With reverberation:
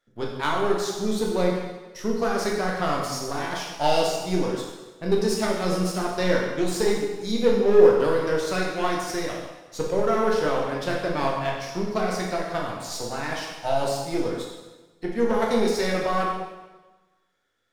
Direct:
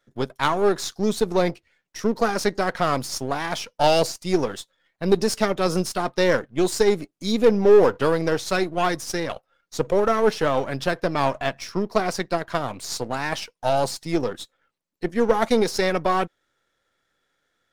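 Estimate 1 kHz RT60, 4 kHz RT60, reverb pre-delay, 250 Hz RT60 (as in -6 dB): 1.2 s, 1.1 s, 6 ms, 1.2 s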